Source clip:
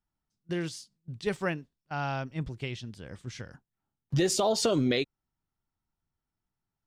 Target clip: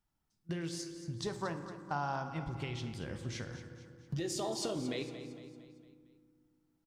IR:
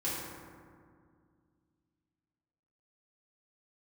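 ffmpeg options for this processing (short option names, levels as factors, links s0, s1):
-filter_complex "[0:a]acompressor=threshold=0.0112:ratio=6,asettb=1/sr,asplit=3[s0][s1][s2];[s0]atrim=end=0.794[s3];[s1]atrim=start=0.79:end=2.29,asetpts=PTS-STARTPTS,afade=t=in:d=0.004:c=qsin,afade=t=out:st=1.496:d=0.004:c=qsin,equalizer=f=1000:t=o:w=0.67:g=9,equalizer=f=2500:t=o:w=0.67:g=-10,equalizer=f=6300:t=o:w=0.67:g=6[s4];[s2]atrim=start=2.286[s5];[s3][s4]acrossfade=d=0.004:c1=hsin:c2=qsin[s6];[s6][s5]acrossfade=d=0.004:c1=qsin:c2=hsin,aecho=1:1:228|456|684|912|1140:0.237|0.114|0.0546|0.0262|0.0126,asplit=2[s7][s8];[1:a]atrim=start_sample=2205,adelay=18[s9];[s8][s9]afir=irnorm=-1:irlink=0,volume=0.224[s10];[s7][s10]amix=inputs=2:normalize=0,volume=1.33"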